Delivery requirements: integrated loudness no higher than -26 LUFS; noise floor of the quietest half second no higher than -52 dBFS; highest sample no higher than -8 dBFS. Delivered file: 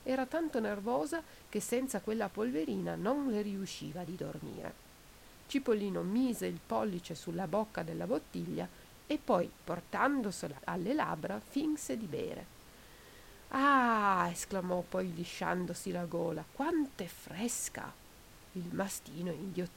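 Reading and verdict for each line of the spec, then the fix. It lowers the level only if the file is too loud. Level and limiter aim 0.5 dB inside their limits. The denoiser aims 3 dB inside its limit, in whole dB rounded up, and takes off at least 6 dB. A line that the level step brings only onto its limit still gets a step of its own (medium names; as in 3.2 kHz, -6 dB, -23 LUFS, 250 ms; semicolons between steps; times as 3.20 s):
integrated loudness -36.0 LUFS: pass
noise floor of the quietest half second -57 dBFS: pass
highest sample -16.0 dBFS: pass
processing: none needed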